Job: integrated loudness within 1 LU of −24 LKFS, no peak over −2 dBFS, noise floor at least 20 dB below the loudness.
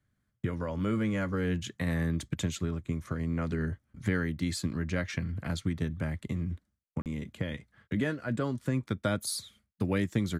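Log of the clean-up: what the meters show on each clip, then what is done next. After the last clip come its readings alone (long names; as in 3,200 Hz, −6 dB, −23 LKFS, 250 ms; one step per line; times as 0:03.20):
number of dropouts 1; longest dropout 38 ms; integrated loudness −33.0 LKFS; sample peak −15.0 dBFS; target loudness −24.0 LKFS
→ repair the gap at 0:07.02, 38 ms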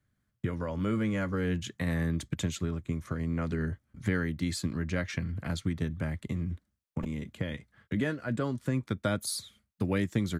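number of dropouts 0; integrated loudness −33.0 LKFS; sample peak −15.0 dBFS; target loudness −24.0 LKFS
→ level +9 dB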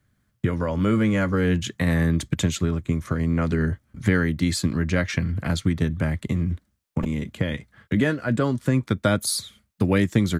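integrated loudness −24.0 LKFS; sample peak −6.0 dBFS; background noise floor −70 dBFS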